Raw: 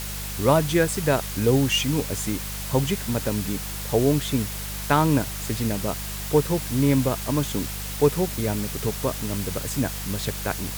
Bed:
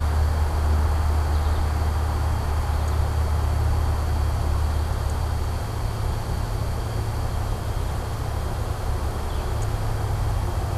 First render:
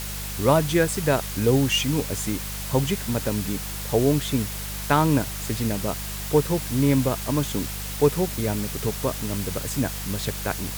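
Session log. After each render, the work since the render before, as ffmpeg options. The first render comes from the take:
ffmpeg -i in.wav -af anull out.wav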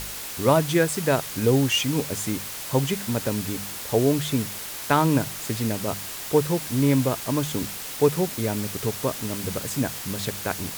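ffmpeg -i in.wav -af "bandreject=frequency=50:width_type=h:width=4,bandreject=frequency=100:width_type=h:width=4,bandreject=frequency=150:width_type=h:width=4,bandreject=frequency=200:width_type=h:width=4" out.wav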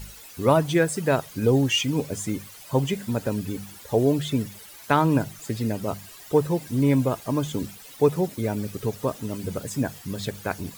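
ffmpeg -i in.wav -af "afftdn=noise_reduction=14:noise_floor=-35" out.wav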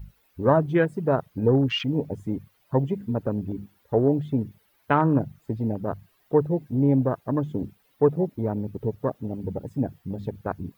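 ffmpeg -i in.wav -af "afwtdn=0.0398,equalizer=frequency=7400:width_type=o:width=1.6:gain=-14" out.wav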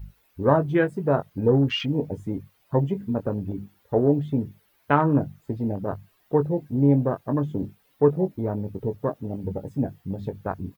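ffmpeg -i in.wav -filter_complex "[0:a]asplit=2[link_01][link_02];[link_02]adelay=21,volume=-9dB[link_03];[link_01][link_03]amix=inputs=2:normalize=0" out.wav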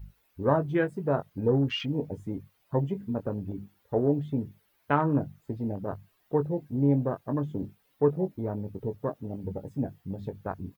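ffmpeg -i in.wav -af "volume=-5dB" out.wav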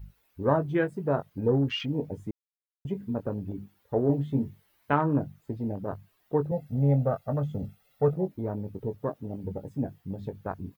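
ffmpeg -i in.wav -filter_complex "[0:a]asettb=1/sr,asplit=3[link_01][link_02][link_03];[link_01]atrim=end=4.074[link_04];[link_02]atrim=start=4.07:end=4.93,asetpts=PTS-STARTPTS,afade=type=in:duration=0.004:curve=qsin,afade=type=out:start_time=0.856:duration=0.004:curve=qsin,asplit=2[link_05][link_06];[link_06]adelay=22,volume=-2.5dB[link_07];[link_05][link_07]amix=inputs=2:normalize=0,atrim=end_sample=37926[link_08];[link_03]atrim=start=4.926[link_09];[link_04][link_08]acrossfade=duration=0.004:curve1=hsin:curve2=qsin[link_10];[link_10][link_09]acrossfade=duration=0.004:curve1=qsin:curve2=hsin,asettb=1/sr,asplit=3[link_11][link_12][link_13];[link_11]atrim=end=6.514[link_14];[link_12]atrim=start=6.51:end=8.14,asetpts=PTS-STARTPTS,afade=type=in:duration=0.004:curve=qsin,afade=type=out:start_time=1.626:duration=0.004:curve=qsin,aecho=1:1:1.5:0.94,atrim=end_sample=71883[link_15];[link_13]atrim=start=8.136[link_16];[link_14][link_15]acrossfade=duration=0.004:curve1=hsin:curve2=qsin[link_17];[link_17][link_16]acrossfade=duration=0.004:curve1=qsin:curve2=hsin,asplit=3[link_18][link_19][link_20];[link_18]atrim=end=2.31,asetpts=PTS-STARTPTS,afade=type=out:start_time=2.306:duration=0.004:curve=hsin[link_21];[link_19]atrim=start=2.31:end=2.85,asetpts=PTS-STARTPTS,volume=0[link_22];[link_20]atrim=start=2.85,asetpts=PTS-STARTPTS,afade=type=in:duration=0.004:curve=hsin[link_23];[link_21][link_22][link_23]concat=n=3:v=0:a=1" out.wav

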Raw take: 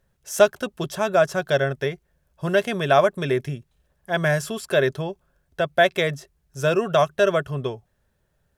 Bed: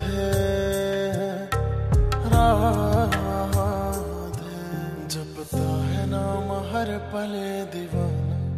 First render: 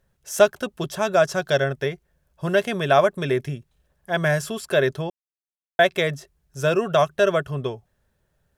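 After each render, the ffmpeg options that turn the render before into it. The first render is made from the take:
ffmpeg -i in.wav -filter_complex "[0:a]asettb=1/sr,asplit=3[link_01][link_02][link_03];[link_01]atrim=end=1.024[link_04];[link_02]atrim=start=1.02:end=1.64,asetpts=PTS-STARTPTS,afade=type=in:duration=0.004:curve=qsin,afade=type=out:start_time=0.616:duration=0.004:curve=qsin,equalizer=frequency=5400:width_type=o:width=1.2:gain=4.5[link_05];[link_03]atrim=start=1.636[link_06];[link_04][link_05]acrossfade=duration=0.004:curve1=hsin:curve2=qsin[link_07];[link_07][link_06]acrossfade=duration=0.004:curve1=qsin:curve2=hsin,asplit=3[link_08][link_09][link_10];[link_08]atrim=end=5.1,asetpts=PTS-STARTPTS,afade=type=out:start_time=5.096:duration=0.004:curve=hsin[link_11];[link_09]atrim=start=5.1:end=5.79,asetpts=PTS-STARTPTS,volume=0[link_12];[link_10]atrim=start=5.79,asetpts=PTS-STARTPTS,afade=type=in:duration=0.004:curve=hsin[link_13];[link_11][link_12][link_13]concat=n=3:v=0:a=1" out.wav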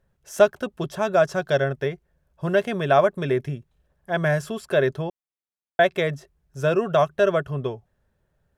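ffmpeg -i in.wav -af "highshelf=frequency=2700:gain=-8.5" out.wav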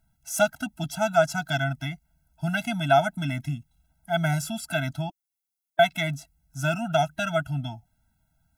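ffmpeg -i in.wav -af "crystalizer=i=2.5:c=0,afftfilt=real='re*eq(mod(floor(b*sr/1024/320),2),0)':imag='im*eq(mod(floor(b*sr/1024/320),2),0)':win_size=1024:overlap=0.75" out.wav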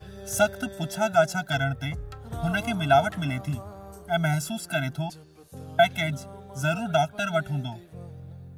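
ffmpeg -i in.wav -i bed.wav -filter_complex "[1:a]volume=-17dB[link_01];[0:a][link_01]amix=inputs=2:normalize=0" out.wav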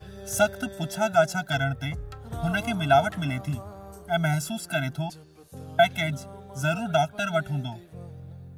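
ffmpeg -i in.wav -af anull out.wav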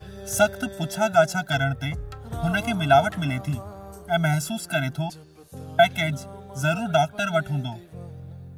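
ffmpeg -i in.wav -af "volume=2.5dB" out.wav

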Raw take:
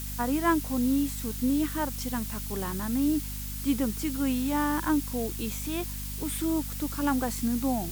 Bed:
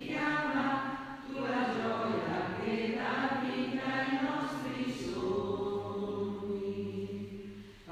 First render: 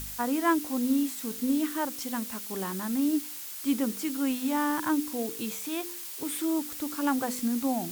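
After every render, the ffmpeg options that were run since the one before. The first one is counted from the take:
ffmpeg -i in.wav -af "bandreject=frequency=50:width_type=h:width=4,bandreject=frequency=100:width_type=h:width=4,bandreject=frequency=150:width_type=h:width=4,bandreject=frequency=200:width_type=h:width=4,bandreject=frequency=250:width_type=h:width=4,bandreject=frequency=300:width_type=h:width=4,bandreject=frequency=350:width_type=h:width=4,bandreject=frequency=400:width_type=h:width=4,bandreject=frequency=450:width_type=h:width=4,bandreject=frequency=500:width_type=h:width=4" out.wav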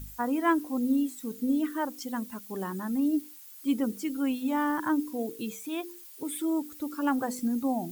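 ffmpeg -i in.wav -af "afftdn=noise_reduction=14:noise_floor=-40" out.wav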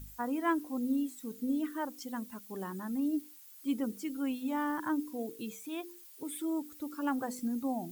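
ffmpeg -i in.wav -af "volume=-5.5dB" out.wav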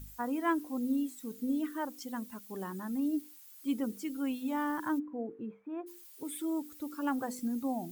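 ffmpeg -i in.wav -filter_complex "[0:a]asplit=3[link_01][link_02][link_03];[link_01]afade=type=out:start_time=4.98:duration=0.02[link_04];[link_02]lowpass=frequency=1600:width=0.5412,lowpass=frequency=1600:width=1.3066,afade=type=in:start_time=4.98:duration=0.02,afade=type=out:start_time=5.86:duration=0.02[link_05];[link_03]afade=type=in:start_time=5.86:duration=0.02[link_06];[link_04][link_05][link_06]amix=inputs=3:normalize=0" out.wav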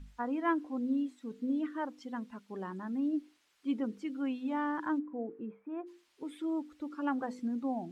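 ffmpeg -i in.wav -af "lowpass=3200,equalizer=frequency=110:width=3.4:gain=-14.5" out.wav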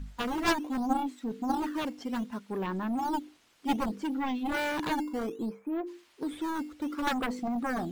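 ffmpeg -i in.wav -filter_complex "[0:a]aeval=exprs='0.112*(cos(1*acos(clip(val(0)/0.112,-1,1)))-cos(1*PI/2))+0.00447*(cos(6*acos(clip(val(0)/0.112,-1,1)))-cos(6*PI/2))+0.0501*(cos(7*acos(clip(val(0)/0.112,-1,1)))-cos(7*PI/2))':channel_layout=same,asplit=2[link_01][link_02];[link_02]acrusher=samples=10:mix=1:aa=0.000001:lfo=1:lforange=16:lforate=0.64,volume=-7dB[link_03];[link_01][link_03]amix=inputs=2:normalize=0" out.wav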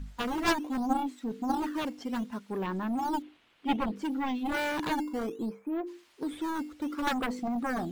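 ffmpeg -i in.wav -filter_complex "[0:a]asettb=1/sr,asplit=3[link_01][link_02][link_03];[link_01]atrim=end=3.224[link_04];[link_02]atrim=start=3.22:end=3.96,asetpts=PTS-STARTPTS,afade=type=in:duration=0.004:curve=qsin,afade=type=out:start_time=0.736:duration=0.004:curve=qsin,highshelf=frequency=4300:width_type=q:width=1.5:gain=-10[link_05];[link_03]atrim=start=3.956[link_06];[link_04][link_05]acrossfade=duration=0.004:curve1=hsin:curve2=qsin[link_07];[link_07][link_06]acrossfade=duration=0.004:curve1=qsin:curve2=hsin" out.wav

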